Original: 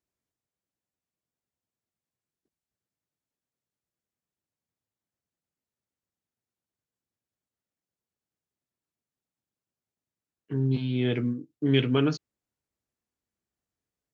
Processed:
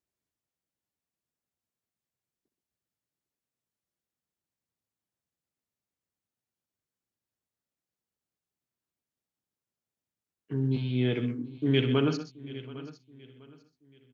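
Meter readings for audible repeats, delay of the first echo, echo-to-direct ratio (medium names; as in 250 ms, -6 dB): 6, 64 ms, -8.0 dB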